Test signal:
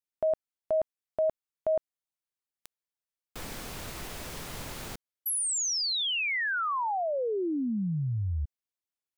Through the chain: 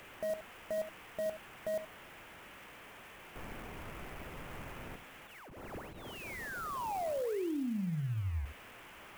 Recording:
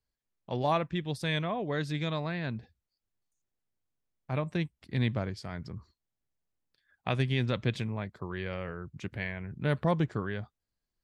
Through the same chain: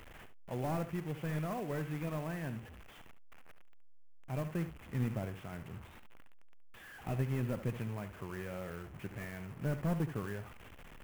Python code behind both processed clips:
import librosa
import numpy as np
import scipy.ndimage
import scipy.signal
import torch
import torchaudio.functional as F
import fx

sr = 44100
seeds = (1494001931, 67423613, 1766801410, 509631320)

y = fx.delta_mod(x, sr, bps=16000, step_db=-40.5)
y = y + 10.0 ** (-11.5 / 20.0) * np.pad(y, (int(71 * sr / 1000.0), 0))[:len(y)]
y = fx.clock_jitter(y, sr, seeds[0], jitter_ms=0.027)
y = y * librosa.db_to_amplitude(-5.5)